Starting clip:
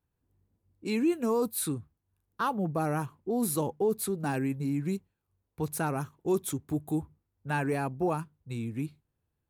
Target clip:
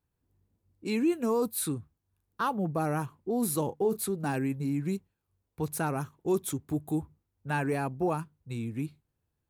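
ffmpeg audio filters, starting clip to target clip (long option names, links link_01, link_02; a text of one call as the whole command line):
ffmpeg -i in.wav -filter_complex "[0:a]asettb=1/sr,asplit=3[link_01][link_02][link_03];[link_01]atrim=end=3.654[link_04];[link_02]atrim=start=3.65:end=4.05,asetpts=PTS-STARTPTS,afade=type=in:duration=0.004:curve=qsin,afade=type=out:start_time=0.396:duration=0.004:curve=qsin,asplit=2[link_05][link_06];[link_06]adelay=31,volume=-11dB[link_07];[link_05][link_07]amix=inputs=2:normalize=0,atrim=end_sample=17640[link_08];[link_03]atrim=start=4.046[link_09];[link_04][link_08]acrossfade=duration=0.004:curve1=hsin:curve2=qsin[link_10];[link_10][link_09]acrossfade=duration=0.004:curve1=qsin:curve2=hsin" out.wav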